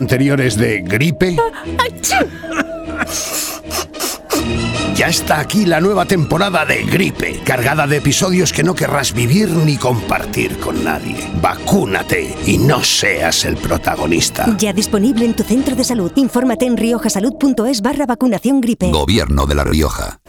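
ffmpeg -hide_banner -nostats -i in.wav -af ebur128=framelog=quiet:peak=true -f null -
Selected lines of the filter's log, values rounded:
Integrated loudness:
  I:         -14.8 LUFS
  Threshold: -24.8 LUFS
Loudness range:
  LRA:         3.2 LU
  Threshold: -34.8 LUFS
  LRA low:   -16.9 LUFS
  LRA high:  -13.8 LUFS
True peak:
  Peak:       -3.3 dBFS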